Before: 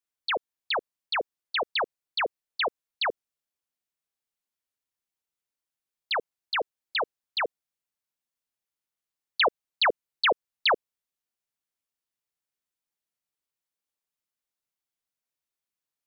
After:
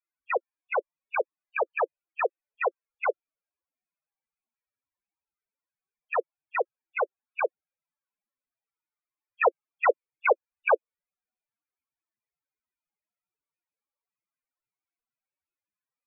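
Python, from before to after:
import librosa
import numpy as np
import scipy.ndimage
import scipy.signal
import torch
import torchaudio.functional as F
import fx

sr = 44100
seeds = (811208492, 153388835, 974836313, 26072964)

y = scipy.signal.sosfilt(scipy.signal.ellip(4, 1.0, 40, 2600.0, 'lowpass', fs=sr, output='sos'), x)
y = fx.spec_topn(y, sr, count=8)
y = y * 10.0 ** (7.5 / 20.0)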